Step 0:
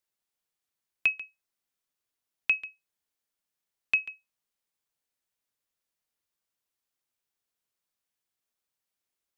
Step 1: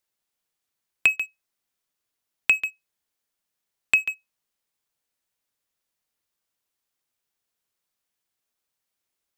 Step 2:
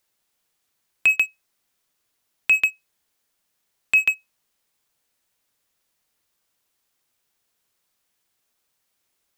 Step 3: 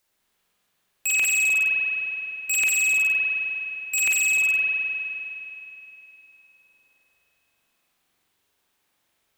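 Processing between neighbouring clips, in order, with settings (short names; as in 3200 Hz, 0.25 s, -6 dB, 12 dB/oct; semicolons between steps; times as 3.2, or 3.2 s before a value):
compressor 4:1, threshold -31 dBFS, peak gain reduction 9.5 dB; sample leveller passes 2; gain +8 dB
limiter -17.5 dBFS, peak gain reduction 11.5 dB; gain +8.5 dB
spring tank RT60 3.3 s, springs 43 ms, chirp 20 ms, DRR -5 dB; wavefolder -17 dBFS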